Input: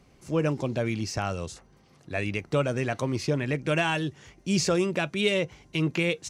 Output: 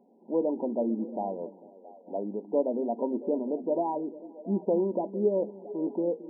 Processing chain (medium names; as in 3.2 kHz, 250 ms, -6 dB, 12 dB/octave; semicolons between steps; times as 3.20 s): brick-wall FIR band-pass 190–1000 Hz; repeats whose band climbs or falls 224 ms, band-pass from 240 Hz, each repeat 0.7 oct, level -12 dB; on a send at -16.5 dB: reverberation RT60 0.25 s, pre-delay 3 ms